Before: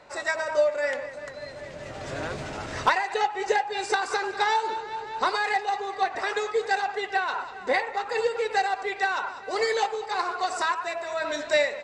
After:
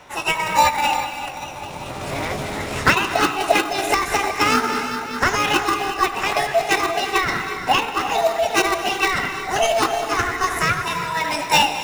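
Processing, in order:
in parallel at −7 dB: decimation without filtering 39×
on the sum: formants moved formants +6 semitones
reverb whose tail is shaped and stops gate 390 ms rising, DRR 8.5 dB
level +5.5 dB

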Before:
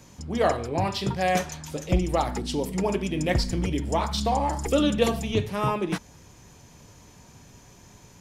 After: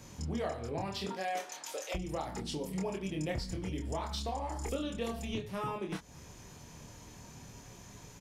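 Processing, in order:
0:01.05–0:01.94: high-pass filter 210 Hz → 610 Hz 24 dB per octave
downward compressor 4 to 1, threshold −35 dBFS, peak gain reduction 16 dB
double-tracking delay 26 ms −4 dB
level −2 dB

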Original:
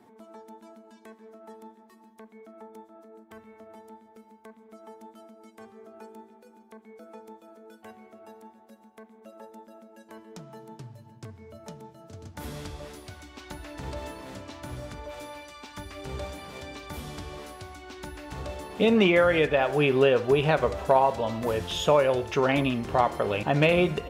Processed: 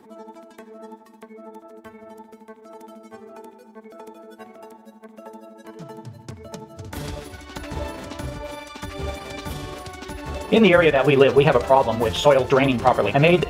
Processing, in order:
time stretch by overlap-add 0.56×, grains 85 ms
level +8 dB

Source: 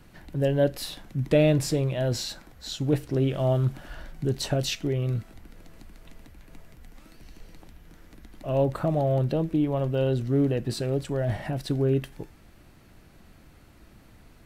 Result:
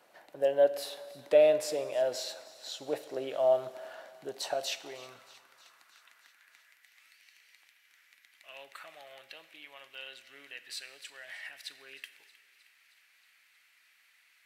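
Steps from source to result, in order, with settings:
feedback echo with a high-pass in the loop 313 ms, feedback 70%, high-pass 970 Hz, level −19 dB
high-pass filter sweep 610 Hz → 2,100 Hz, 0:04.13–0:07.04
four-comb reverb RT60 1.6 s, combs from 28 ms, DRR 14 dB
level −6 dB

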